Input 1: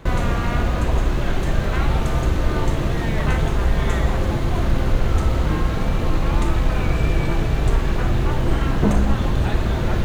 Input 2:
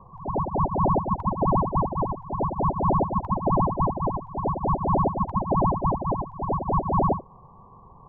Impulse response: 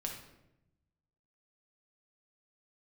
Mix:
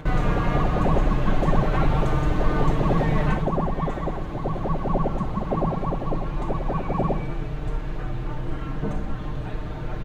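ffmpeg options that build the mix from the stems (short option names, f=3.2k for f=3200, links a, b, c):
-filter_complex "[0:a]acompressor=mode=upward:threshold=-35dB:ratio=2.5,highshelf=f=4.2k:g=-12,aecho=1:1:6.6:0.65,volume=-3dB,afade=t=out:st=3.25:d=0.22:silence=0.398107[a];[1:a]highpass=f=130:w=0.5412,highpass=f=130:w=1.3066,equalizer=f=980:w=5:g=-11.5,volume=-4dB,asplit=2[b][c];[c]volume=-5.5dB[d];[2:a]atrim=start_sample=2205[e];[d][e]afir=irnorm=-1:irlink=0[f];[a][b][f]amix=inputs=3:normalize=0"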